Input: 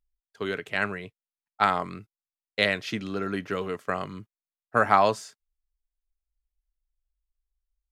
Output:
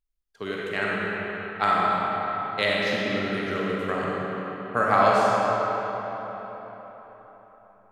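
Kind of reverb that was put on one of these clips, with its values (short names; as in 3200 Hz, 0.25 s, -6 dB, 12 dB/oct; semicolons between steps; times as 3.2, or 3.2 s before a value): digital reverb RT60 4.4 s, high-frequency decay 0.65×, pre-delay 5 ms, DRR -5 dB; gain -3 dB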